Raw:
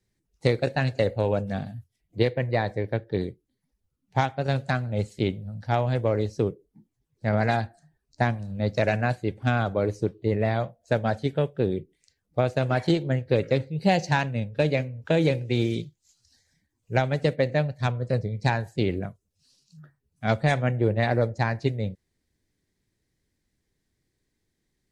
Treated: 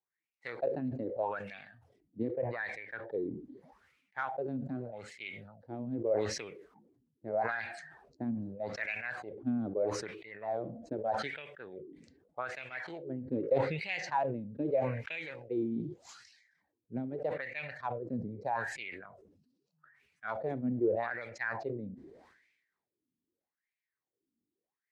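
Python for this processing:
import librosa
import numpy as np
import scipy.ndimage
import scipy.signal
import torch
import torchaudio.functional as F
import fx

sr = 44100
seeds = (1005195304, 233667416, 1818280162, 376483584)

y = fx.wah_lfo(x, sr, hz=0.81, low_hz=240.0, high_hz=2400.0, q=6.3)
y = fx.sustainer(y, sr, db_per_s=53.0)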